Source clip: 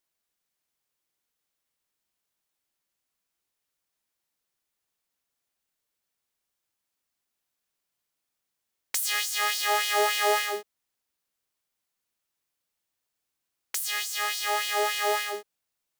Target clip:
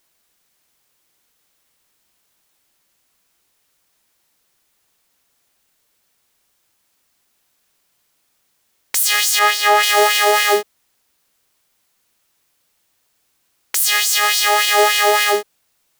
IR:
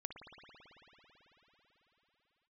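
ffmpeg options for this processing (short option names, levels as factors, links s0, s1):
-filter_complex "[0:a]asettb=1/sr,asplit=3[s0][s1][s2];[s0]atrim=end=9.394[s3];[s1]atrim=start=9.39:end=9.83,asetpts=PTS-STARTPTS,afade=t=in:d=0.004:c=qsin,afade=t=out:st=0.436:d=0.004:c=qsin,highshelf=f=2500:g=-11[s4];[s2]atrim=start=9.826[s5];[s3][s4]acrossfade=d=0.004:c1=hsin:c2=qsin[s6];[s6][s5]acrossfade=d=0.004:c1=qsin:c2=hsin,alimiter=level_in=8.91:limit=0.891:release=50:level=0:latency=1,volume=0.841"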